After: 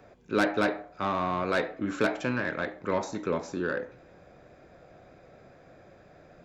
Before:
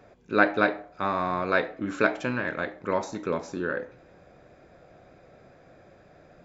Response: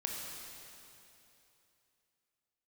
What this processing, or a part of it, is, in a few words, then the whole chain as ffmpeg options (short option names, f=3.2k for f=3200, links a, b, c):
one-band saturation: -filter_complex "[0:a]acrossover=split=380|4400[a][b][c];[b]asoftclip=type=tanh:threshold=-21.5dB[d];[a][d][c]amix=inputs=3:normalize=0"